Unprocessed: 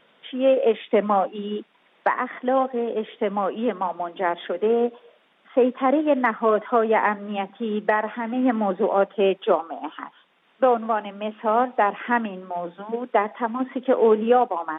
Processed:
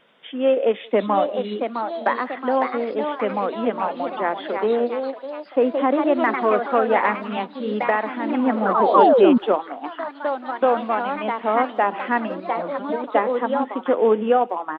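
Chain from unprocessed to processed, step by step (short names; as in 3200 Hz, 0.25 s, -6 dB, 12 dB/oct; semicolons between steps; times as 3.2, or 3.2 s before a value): painted sound fall, 8.94–9.38, 220–1200 Hz -14 dBFS; echoes that change speed 0.779 s, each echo +2 st, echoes 3, each echo -6 dB; speakerphone echo 0.18 s, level -26 dB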